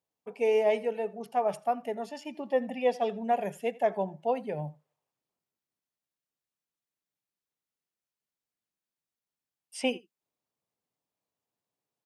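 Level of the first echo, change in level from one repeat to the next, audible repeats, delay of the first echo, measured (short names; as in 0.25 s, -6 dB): -22.0 dB, no steady repeat, 1, 84 ms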